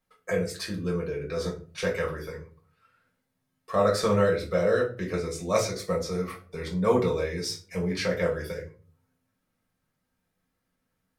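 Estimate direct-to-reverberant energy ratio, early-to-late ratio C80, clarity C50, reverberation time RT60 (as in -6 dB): -3.0 dB, 16.0 dB, 10.5 dB, 0.40 s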